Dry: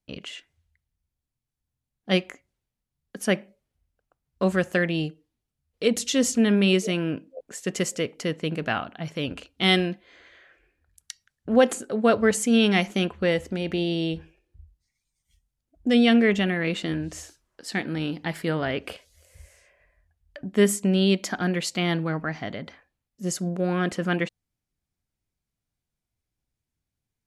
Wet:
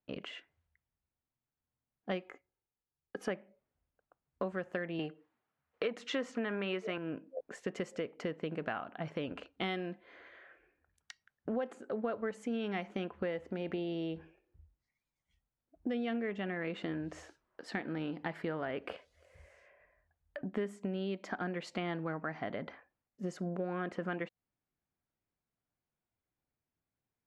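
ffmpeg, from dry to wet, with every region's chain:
-filter_complex "[0:a]asettb=1/sr,asplit=3[s0][s1][s2];[s0]atrim=end=2.224[s3];[s1]atrim=start=2.22:end=3.3,asetpts=PTS-STARTPTS,afade=t=in:d=0.004:c=qsin,afade=t=out:st=1.076:d=0.004:c=qsin,agate=range=0.501:threshold=0.002:ratio=16:release=100:detection=peak,equalizer=f=1900:t=o:w=0.26:g=-3,aecho=1:1:2.4:0.43,atrim=end_sample=47628[s4];[s2]atrim=start=3.296[s5];[s3][s4]acrossfade=d=0.004:c1=hsin:c2=qsin[s6];[s6][s5]acrossfade=d=0.004:c1=qsin:c2=hsin,asettb=1/sr,asplit=3[s7][s8][s9];[s7]atrim=end=4.994[s10];[s8]atrim=start=4.99:end=6.98,asetpts=PTS-STARTPTS,afade=t=in:d=0.004:c=qsin,afade=t=out:st=1.986:d=0.004:c=qsin,highpass=91,equalizer=f=1400:t=o:w=2.8:g=13[s11];[s9]atrim=start=6.976[s12];[s10][s11]acrossfade=d=0.004:c1=hsin:c2=qsin[s13];[s13][s12]acrossfade=d=0.004:c1=qsin:c2=hsin,lowpass=1500,aemphasis=mode=production:type=bsi,acompressor=threshold=0.0178:ratio=6,volume=1.12"

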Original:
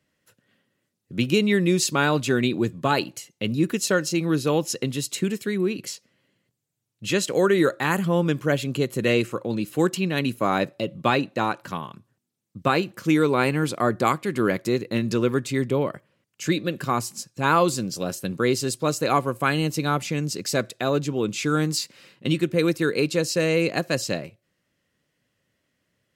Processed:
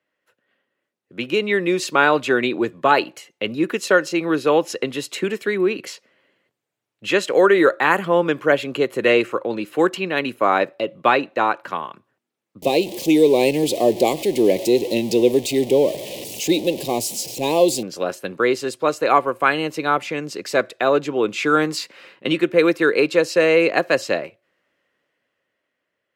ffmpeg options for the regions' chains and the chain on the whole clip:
-filter_complex "[0:a]asettb=1/sr,asplit=3[s0][s1][s2];[s0]atrim=end=12.624[s3];[s1]atrim=start=12.62:end=17.83,asetpts=PTS-STARTPTS,afade=t=in:d=0.004:c=qsin,afade=t=out:st=5.206:d=0.004:c=qsin,aeval=exprs='val(0)+0.5*0.0355*sgn(val(0))':c=same,asuperstop=centerf=1400:order=4:qfactor=0.57,aemphasis=mode=production:type=cd[s4];[s2]atrim=start=17.826[s5];[s3][s4]acrossfade=d=0.004:c1=hsin:c2=qsin[s6];[s6][s5]acrossfade=d=0.004:c1=qsin:c2=hsin,acrossover=split=330 3100:gain=0.112 1 0.2[s7][s8][s9];[s7][s8][s9]amix=inputs=3:normalize=0,dynaudnorm=f=130:g=21:m=3.76"

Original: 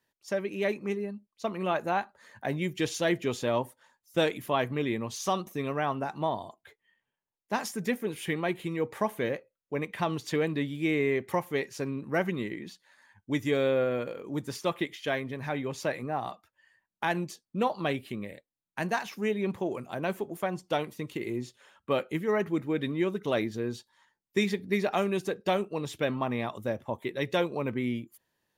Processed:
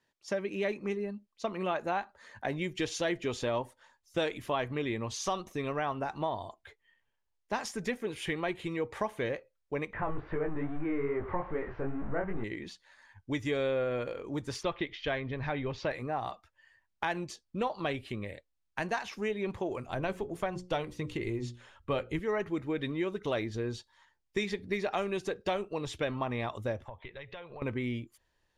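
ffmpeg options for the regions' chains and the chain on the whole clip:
-filter_complex "[0:a]asettb=1/sr,asplit=3[s0][s1][s2];[s0]atrim=end=9.934[s3];[s1]atrim=start=9.93:end=12.44,asetpts=PTS-STARTPTS,afade=t=in:d=0.004:c=qsin,afade=t=out:st=2.506:d=0.004:c=qsin,aeval=exprs='val(0)+0.5*0.0251*sgn(val(0))':c=same,lowpass=f=1700:w=0.5412,lowpass=f=1700:w=1.3066,flanger=delay=18:depth=5.4:speed=2.4[s4];[s2]atrim=start=12.436[s5];[s3][s4]acrossfade=d=0.004:c1=hsin:c2=qsin[s6];[s6][s5]acrossfade=d=0.004:c1=qsin:c2=hsin,asettb=1/sr,asplit=3[s7][s8][s9];[s7]atrim=end=14.634[s10];[s8]atrim=start=14.63:end=15.91,asetpts=PTS-STARTPTS,afade=t=in:d=0.004:c=qsin,afade=t=out:st=1.276:d=0.004:c=qsin,lowpass=f=4700:w=0.5412,lowpass=f=4700:w=1.3066,lowshelf=f=77:g=11[s11];[s9]atrim=start=15.906[s12];[s10][s11]acrossfade=d=0.004:c1=hsin:c2=qsin[s13];[s13][s12]acrossfade=d=0.004:c1=qsin:c2=hsin,asettb=1/sr,asplit=3[s14][s15][s16];[s14]atrim=end=19.884[s17];[s15]atrim=start=19.88:end=22.19,asetpts=PTS-STARTPTS,afade=t=in:d=0.004:c=qsin,afade=t=out:st=2.306:d=0.004:c=qsin,lowshelf=f=150:g=10.5,bandreject=f=60:t=h:w=6,bandreject=f=120:t=h:w=6,bandreject=f=180:t=h:w=6,bandreject=f=240:t=h:w=6,bandreject=f=300:t=h:w=6,bandreject=f=360:t=h:w=6,bandreject=f=420:t=h:w=6,bandreject=f=480:t=h:w=6,bandreject=f=540:t=h:w=6[s18];[s16]atrim=start=22.186[s19];[s17][s18]acrossfade=d=0.004:c1=hsin:c2=qsin[s20];[s20][s19]acrossfade=d=0.004:c1=qsin:c2=hsin,asettb=1/sr,asplit=3[s21][s22][s23];[s21]atrim=end=26.884[s24];[s22]atrim=start=26.88:end=27.62,asetpts=PTS-STARTPTS,afade=t=in:d=0.004:c=qsin,afade=t=out:st=0.736:d=0.004:c=qsin,equalizer=f=300:t=o:w=1:g=-12.5,acompressor=threshold=0.00794:ratio=8:attack=3.2:release=140:knee=1:detection=peak,lowpass=f=3600:w=0.5412,lowpass=f=3600:w=1.3066[s25];[s23]atrim=start=27.616[s26];[s24][s25]acrossfade=d=0.004:c1=hsin:c2=qsin[s27];[s27][s26]acrossfade=d=0.004:c1=qsin:c2=hsin,lowpass=7300,asubboost=boost=11:cutoff=52,acompressor=threshold=0.0224:ratio=2,volume=1.19"

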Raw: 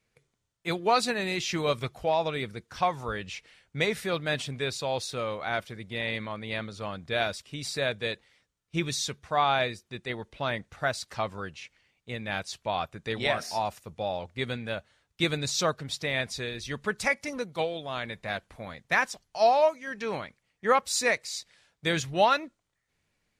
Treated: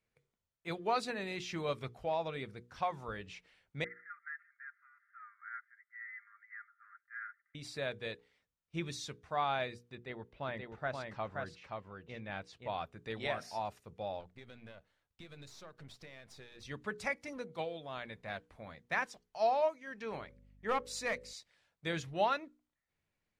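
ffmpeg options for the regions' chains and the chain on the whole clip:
-filter_complex "[0:a]asettb=1/sr,asplit=3[s0][s1][s2];[s0]atrim=end=3.844[s3];[s1]atrim=start=3.84:end=7.55,asetpts=PTS-STARTPTS,afade=t=in:d=0.004:c=qsin,afade=t=out:st=3.706:d=0.004:c=qsin,aeval=exprs='if(lt(val(0),0),0.708*val(0),val(0))':c=same,asuperpass=centerf=1600:order=12:qfactor=2.1,aecho=1:1:5:0.59,atrim=end_sample=163611[s4];[s2]atrim=start=7.546[s5];[s3][s4]acrossfade=d=0.004:c1=hsin:c2=qsin[s6];[s6][s5]acrossfade=d=0.004:c1=qsin:c2=hsin,asettb=1/sr,asplit=3[s7][s8][s9];[s7]atrim=end=9.954[s10];[s8]atrim=start=9.95:end=12.68,asetpts=PTS-STARTPTS,afade=t=in:d=0.004:c=qsin,afade=t=out:st=2.726:d=0.004:c=qsin,lowpass=f=2900:p=1,aecho=1:1:526:0.668,atrim=end_sample=120393[s11];[s9]atrim=start=12.676[s12];[s10][s11]acrossfade=d=0.004:c1=hsin:c2=qsin[s13];[s13][s12]acrossfade=d=0.004:c1=qsin:c2=hsin,asettb=1/sr,asplit=3[s14][s15][s16];[s14]atrim=end=14.204[s17];[s15]atrim=start=14.2:end=16.63,asetpts=PTS-STARTPTS,afade=t=in:d=0.004:c=qsin,afade=t=out:st=2.426:d=0.004:c=qsin,aeval=exprs='if(lt(val(0),0),0.447*val(0),val(0))':c=same,acompressor=threshold=0.0126:ratio=8:attack=3.2:release=140:knee=1:detection=peak[s18];[s16]atrim=start=16.626[s19];[s17][s18]acrossfade=d=0.004:c1=hsin:c2=qsin[s20];[s20][s19]acrossfade=d=0.004:c1=qsin:c2=hsin,asettb=1/sr,asplit=3[s21][s22][s23];[s21]atrim=end=20.114[s24];[s22]atrim=start=20.11:end=21.33,asetpts=PTS-STARTPTS,afade=t=in:d=0.004:c=qsin,afade=t=out:st=1.216:d=0.004:c=qsin,bandreject=f=62.22:t=h:w=4,bandreject=f=124.44:t=h:w=4,bandreject=f=186.66:t=h:w=4,bandreject=f=248.88:t=h:w=4,bandreject=f=311.1:t=h:w=4,bandreject=f=373.32:t=h:w=4,bandreject=f=435.54:t=h:w=4,bandreject=f=497.76:t=h:w=4,bandreject=f=559.98:t=h:w=4,aeval=exprs='val(0)+0.00251*(sin(2*PI*50*n/s)+sin(2*PI*2*50*n/s)/2+sin(2*PI*3*50*n/s)/3+sin(2*PI*4*50*n/s)/4+sin(2*PI*5*50*n/s)/5)':c=same,aeval=exprs='clip(val(0),-1,0.1)':c=same[s25];[s23]atrim=start=21.326[s26];[s24][s25]acrossfade=d=0.004:c1=hsin:c2=qsin[s27];[s27][s26]acrossfade=d=0.004:c1=qsin:c2=hsin,highshelf=f=4000:g=-8,bandreject=f=60:t=h:w=6,bandreject=f=120:t=h:w=6,bandreject=f=180:t=h:w=6,bandreject=f=240:t=h:w=6,bandreject=f=300:t=h:w=6,bandreject=f=360:t=h:w=6,bandreject=f=420:t=h:w=6,bandreject=f=480:t=h:w=6,volume=0.376"

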